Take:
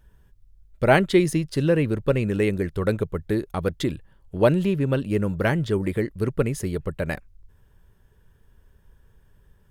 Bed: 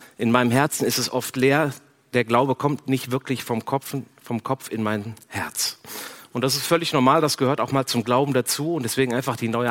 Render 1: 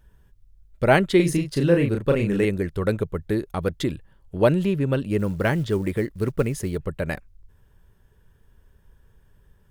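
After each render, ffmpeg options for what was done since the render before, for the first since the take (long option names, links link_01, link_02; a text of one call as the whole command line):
ffmpeg -i in.wav -filter_complex "[0:a]asettb=1/sr,asplit=3[link_01][link_02][link_03];[link_01]atrim=end=1.164[link_04];[link_02]atrim=start=1.16:end=2.45,asetpts=PTS-STARTPTS,afade=type=in:duration=0.004:curve=qsin,afade=type=out:start_time=1.286:duration=0.004:curve=qsin,asplit=2[link_05][link_06];[link_06]adelay=35,volume=-4dB[link_07];[link_05][link_07]amix=inputs=2:normalize=0,atrim=end_sample=56889[link_08];[link_03]atrim=start=2.446[link_09];[link_04][link_08]acrossfade=duration=0.004:curve1=hsin:curve2=qsin[link_10];[link_10][link_09]acrossfade=duration=0.004:curve1=qsin:curve2=hsin,asplit=3[link_11][link_12][link_13];[link_11]afade=type=out:start_time=5.18:duration=0.02[link_14];[link_12]acrusher=bits=8:mode=log:mix=0:aa=0.000001,afade=type=in:start_time=5.18:duration=0.02,afade=type=out:start_time=6.76:duration=0.02[link_15];[link_13]afade=type=in:start_time=6.76:duration=0.02[link_16];[link_14][link_15][link_16]amix=inputs=3:normalize=0" out.wav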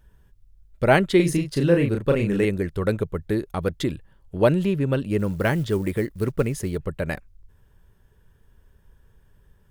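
ffmpeg -i in.wav -filter_complex "[0:a]asettb=1/sr,asplit=3[link_01][link_02][link_03];[link_01]atrim=end=5.324[link_04];[link_02]atrim=start=5.32:end=6.26,asetpts=PTS-STARTPTS,afade=type=in:duration=0.004:curve=qsin,afade=type=out:start_time=0.936:duration=0.004:curve=qsin,highshelf=frequency=10000:gain=6[link_05];[link_03]atrim=start=6.256[link_06];[link_04][link_05]acrossfade=duration=0.004:curve1=hsin:curve2=qsin[link_07];[link_07][link_06]acrossfade=duration=0.004:curve1=qsin:curve2=hsin" out.wav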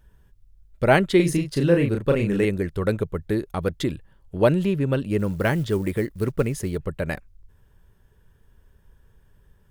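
ffmpeg -i in.wav -af anull out.wav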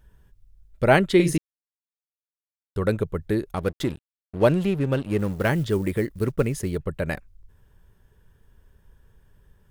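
ffmpeg -i in.wav -filter_complex "[0:a]asettb=1/sr,asplit=3[link_01][link_02][link_03];[link_01]atrim=end=3.564[link_04];[link_02]atrim=start=3.56:end=5.49,asetpts=PTS-STARTPTS,afade=type=in:duration=0.004:curve=qsin,afade=type=out:start_time=1.926:duration=0.004:curve=qsin,aeval=exprs='sgn(val(0))*max(abs(val(0))-0.0106,0)':channel_layout=same[link_05];[link_03]atrim=start=5.486[link_06];[link_04][link_05]acrossfade=duration=0.004:curve1=hsin:curve2=qsin[link_07];[link_07][link_06]acrossfade=duration=0.004:curve1=qsin:curve2=hsin,asettb=1/sr,asplit=3[link_08][link_09][link_10];[link_08]atrim=end=6.194[link_11];[link_09]atrim=start=6.19:end=6.87,asetpts=PTS-STARTPTS,afade=type=in:duration=0.004:curve=qsin,afade=type=out:start_time=0.676:duration=0.004:curve=qsin,agate=range=-33dB:threshold=-35dB:ratio=3:release=100:detection=peak[link_12];[link_10]atrim=start=6.866[link_13];[link_11][link_12]acrossfade=duration=0.004:curve1=hsin:curve2=qsin[link_14];[link_14][link_13]acrossfade=duration=0.004:curve1=qsin:curve2=hsin,asplit=3[link_15][link_16][link_17];[link_15]atrim=end=1.38,asetpts=PTS-STARTPTS,afade=type=out:start_time=1.376:duration=0.004:curve=hsin[link_18];[link_16]atrim=start=1.38:end=2.76,asetpts=PTS-STARTPTS,volume=0[link_19];[link_17]atrim=start=2.76,asetpts=PTS-STARTPTS,afade=type=in:duration=0.004:curve=hsin[link_20];[link_18][link_19][link_20]concat=n=3:v=0:a=1" out.wav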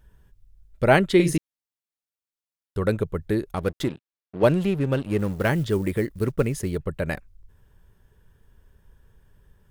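ffmpeg -i in.wav -filter_complex "[0:a]asplit=3[link_01][link_02][link_03];[link_01]afade=type=out:start_time=3.88:duration=0.02[link_04];[link_02]highpass=150,lowpass=4500,afade=type=in:start_time=3.88:duration=0.02,afade=type=out:start_time=4.42:duration=0.02[link_05];[link_03]afade=type=in:start_time=4.42:duration=0.02[link_06];[link_04][link_05][link_06]amix=inputs=3:normalize=0" out.wav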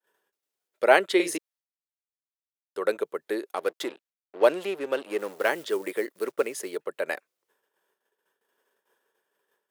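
ffmpeg -i in.wav -af "agate=range=-33dB:threshold=-48dB:ratio=3:detection=peak,highpass=frequency=390:width=0.5412,highpass=frequency=390:width=1.3066" out.wav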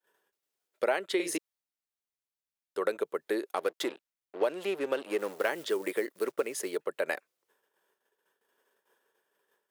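ffmpeg -i in.wav -af "acompressor=threshold=-25dB:ratio=6" out.wav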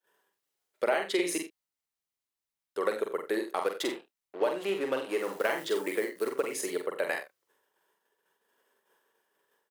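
ffmpeg -i in.wav -filter_complex "[0:a]asplit=2[link_01][link_02];[link_02]adelay=45,volume=-9dB[link_03];[link_01][link_03]amix=inputs=2:normalize=0,aecho=1:1:46|76:0.596|0.168" out.wav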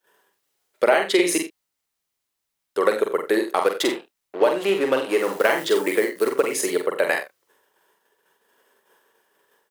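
ffmpeg -i in.wav -af "volume=10dB" out.wav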